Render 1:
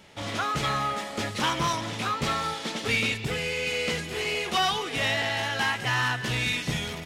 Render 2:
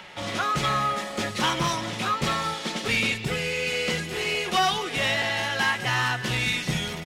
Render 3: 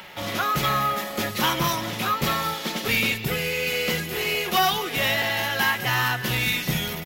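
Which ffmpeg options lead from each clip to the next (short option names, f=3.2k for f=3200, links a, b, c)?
-filter_complex "[0:a]aecho=1:1:5.5:0.33,acrossover=split=160|640|3800[a][b][c][d];[c]acompressor=mode=upward:threshold=-38dB:ratio=2.5[e];[a][b][e][d]amix=inputs=4:normalize=0,volume=1.5dB"
-af "aexciter=amount=13.2:drive=3.7:freq=12k,volume=1.5dB"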